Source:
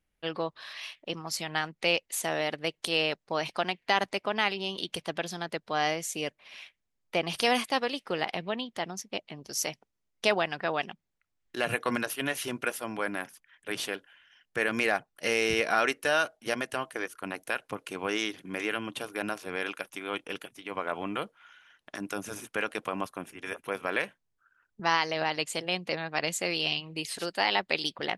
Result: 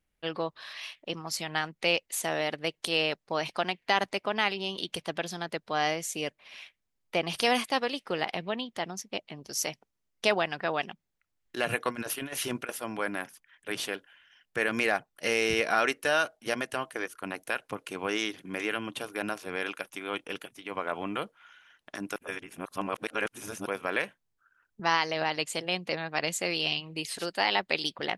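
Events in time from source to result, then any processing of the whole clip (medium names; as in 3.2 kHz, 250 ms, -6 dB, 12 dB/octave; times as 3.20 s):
11.89–12.69 s: compressor with a negative ratio -34 dBFS, ratio -0.5
22.16–23.66 s: reverse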